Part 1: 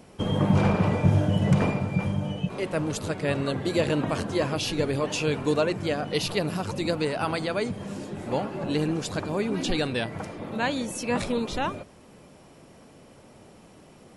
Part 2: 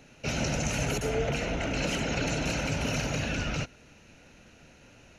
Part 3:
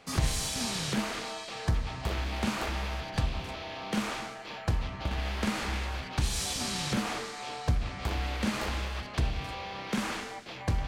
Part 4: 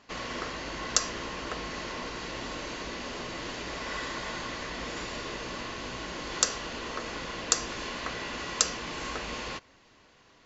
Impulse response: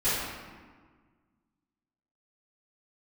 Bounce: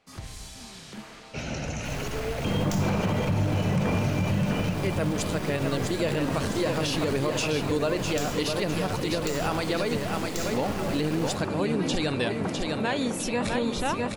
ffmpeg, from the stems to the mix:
-filter_complex "[0:a]adelay=2250,volume=1.5dB,asplit=2[a][b];[b]volume=-6dB[c];[1:a]highshelf=f=6.3k:g=-7.5,adelay=1100,volume=-3dB[d];[2:a]volume=-12dB,asplit=2[e][f];[f]volume=-19.5dB[g];[3:a]acrusher=bits=3:dc=4:mix=0:aa=0.000001,adelay=1750,volume=-8dB,asplit=2[h][i];[i]volume=-8.5dB[j];[4:a]atrim=start_sample=2205[k];[g][j]amix=inputs=2:normalize=0[l];[l][k]afir=irnorm=-1:irlink=0[m];[c]aecho=0:1:654|1308|1962|2616|3270|3924|4578:1|0.48|0.23|0.111|0.0531|0.0255|0.0122[n];[a][d][e][h][m][n]amix=inputs=6:normalize=0,alimiter=limit=-17dB:level=0:latency=1:release=63"

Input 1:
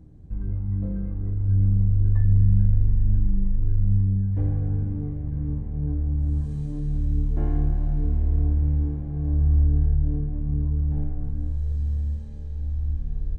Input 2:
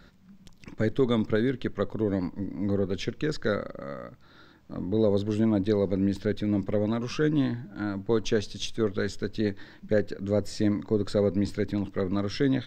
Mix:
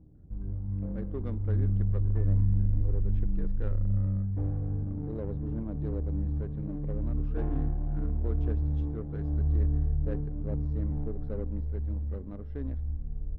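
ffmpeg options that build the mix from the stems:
-filter_complex "[0:a]lowshelf=f=350:g=-7.5,volume=0dB[a];[1:a]adelay=150,volume=-14.5dB[b];[a][b]amix=inputs=2:normalize=0,adynamicsmooth=sensitivity=2.5:basefreq=650"

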